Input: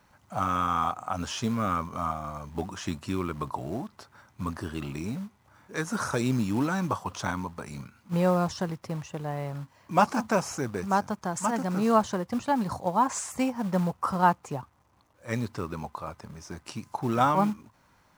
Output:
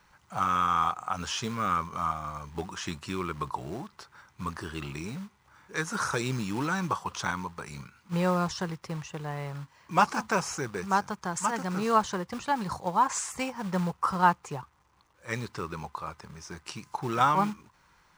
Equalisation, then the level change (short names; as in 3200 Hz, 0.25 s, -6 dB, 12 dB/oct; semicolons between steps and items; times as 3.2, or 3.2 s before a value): fifteen-band EQ 100 Hz -10 dB, 250 Hz -11 dB, 630 Hz -9 dB, 16000 Hz -11 dB; +3.0 dB